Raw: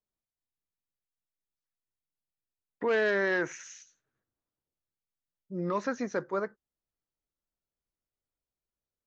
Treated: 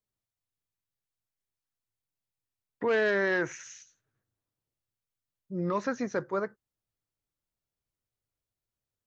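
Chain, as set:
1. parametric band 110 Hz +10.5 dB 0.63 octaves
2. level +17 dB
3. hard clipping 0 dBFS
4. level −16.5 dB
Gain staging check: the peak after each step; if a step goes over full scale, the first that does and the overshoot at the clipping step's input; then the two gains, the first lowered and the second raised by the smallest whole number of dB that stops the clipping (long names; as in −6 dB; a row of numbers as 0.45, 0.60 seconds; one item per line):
−19.0, −2.0, −2.0, −18.5 dBFS
no step passes full scale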